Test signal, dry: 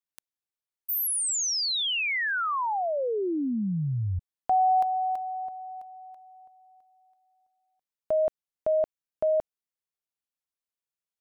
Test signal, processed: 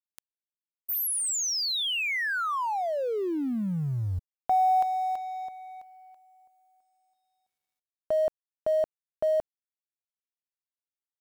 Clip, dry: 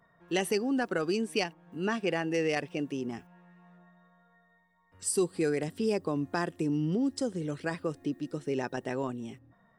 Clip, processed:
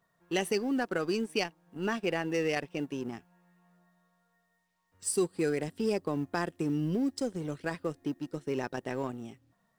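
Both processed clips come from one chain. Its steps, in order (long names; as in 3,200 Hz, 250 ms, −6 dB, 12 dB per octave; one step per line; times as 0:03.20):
mu-law and A-law mismatch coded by A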